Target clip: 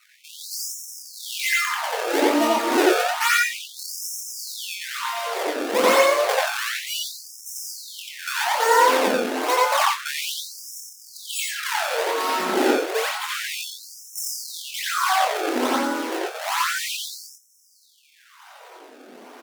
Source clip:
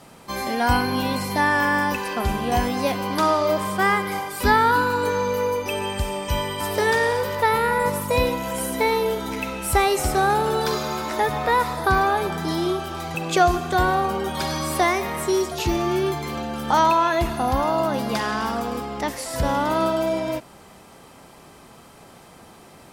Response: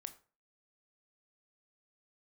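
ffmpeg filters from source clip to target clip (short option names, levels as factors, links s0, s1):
-filter_complex "[0:a]acrusher=samples=30:mix=1:aa=0.000001:lfo=1:lforange=48:lforate=0.95,asplit=2[s0][s1];[s1]adelay=28,volume=0.501[s2];[s0][s2]amix=inputs=2:normalize=0,asplit=2[s3][s4];[1:a]atrim=start_sample=2205,highshelf=f=4600:g=-8.5,adelay=104[s5];[s4][s5]afir=irnorm=-1:irlink=0,volume=2.66[s6];[s3][s6]amix=inputs=2:normalize=0,asetrate=52038,aresample=44100,afftfilt=real='re*gte(b*sr/1024,210*pow(5300/210,0.5+0.5*sin(2*PI*0.3*pts/sr)))':imag='im*gte(b*sr/1024,210*pow(5300/210,0.5+0.5*sin(2*PI*0.3*pts/sr)))':win_size=1024:overlap=0.75,volume=0.841"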